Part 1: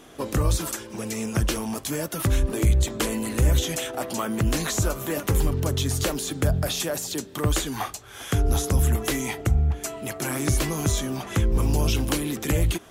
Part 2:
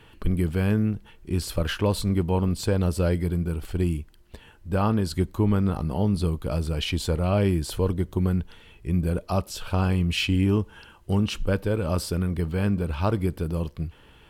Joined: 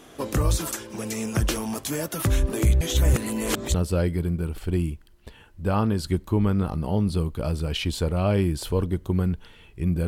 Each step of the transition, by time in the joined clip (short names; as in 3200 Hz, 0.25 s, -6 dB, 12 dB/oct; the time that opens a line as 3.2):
part 1
2.81–3.74 reverse
3.74 switch to part 2 from 2.81 s